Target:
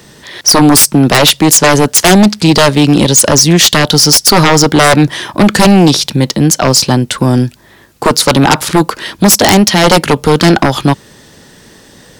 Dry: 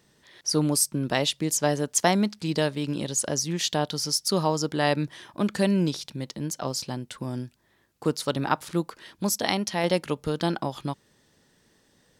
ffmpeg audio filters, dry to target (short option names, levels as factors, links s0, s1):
-filter_complex "[0:a]acrossover=split=190[s0][s1];[s0]alimiter=level_in=2.37:limit=0.0631:level=0:latency=1,volume=0.422[s2];[s2][s1]amix=inputs=2:normalize=0,aeval=exprs='0.631*sin(PI/2*7.94*val(0)/0.631)':c=same,volume=1.33"